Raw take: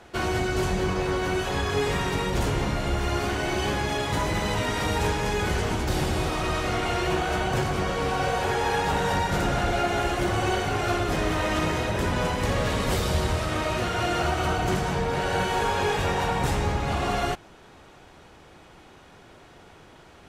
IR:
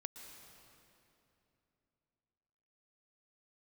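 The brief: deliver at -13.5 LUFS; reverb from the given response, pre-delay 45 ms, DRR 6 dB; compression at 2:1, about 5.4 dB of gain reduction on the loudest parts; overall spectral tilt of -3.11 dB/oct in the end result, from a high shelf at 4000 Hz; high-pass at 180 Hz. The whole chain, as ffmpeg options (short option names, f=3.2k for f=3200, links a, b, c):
-filter_complex "[0:a]highpass=180,highshelf=f=4k:g=7,acompressor=threshold=-31dB:ratio=2,asplit=2[a][b];[1:a]atrim=start_sample=2205,adelay=45[c];[b][c]afir=irnorm=-1:irlink=0,volume=-2.5dB[d];[a][d]amix=inputs=2:normalize=0,volume=16dB"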